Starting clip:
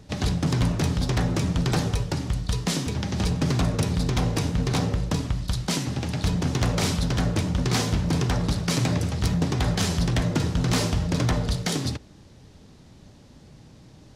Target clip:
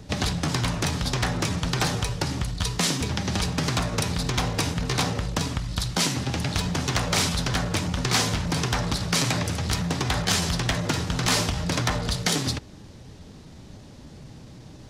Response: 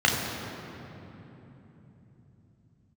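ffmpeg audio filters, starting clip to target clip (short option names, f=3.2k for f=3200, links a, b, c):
-filter_complex "[0:a]atempo=0.95,acrossover=split=730|2200[a][b][c];[a]acompressor=threshold=-30dB:ratio=6[d];[d][b][c]amix=inputs=3:normalize=0,volume=5dB"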